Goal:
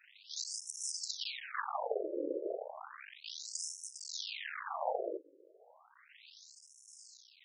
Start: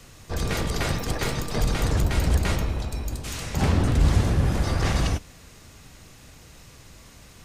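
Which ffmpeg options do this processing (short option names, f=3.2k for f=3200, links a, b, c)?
-filter_complex "[0:a]acrossover=split=410[a][b];[a]aeval=exprs='val(0)*(1-0.5/2+0.5/2*cos(2*PI*1.5*n/s))':c=same[c];[b]aeval=exprs='val(0)*(1-0.5/2-0.5/2*cos(2*PI*1.5*n/s))':c=same[d];[c][d]amix=inputs=2:normalize=0,aeval=exprs='max(val(0),0)':c=same,afftfilt=real='re*between(b*sr/1024,410*pow(7600/410,0.5+0.5*sin(2*PI*0.33*pts/sr))/1.41,410*pow(7600/410,0.5+0.5*sin(2*PI*0.33*pts/sr))*1.41)':imag='im*between(b*sr/1024,410*pow(7600/410,0.5+0.5*sin(2*PI*0.33*pts/sr))/1.41,410*pow(7600/410,0.5+0.5*sin(2*PI*0.33*pts/sr))*1.41)':win_size=1024:overlap=0.75,volume=5dB"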